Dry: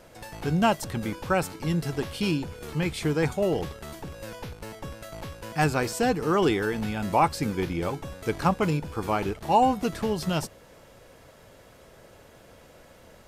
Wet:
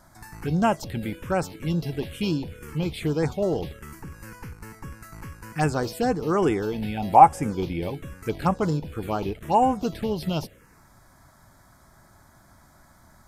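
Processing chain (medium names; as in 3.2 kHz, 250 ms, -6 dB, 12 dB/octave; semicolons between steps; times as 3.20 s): 6.97–7.42 s: peaking EQ 780 Hz +13.5 dB 0.3 oct; touch-sensitive phaser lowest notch 450 Hz, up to 4.2 kHz, full sweep at -18 dBFS; trim +1 dB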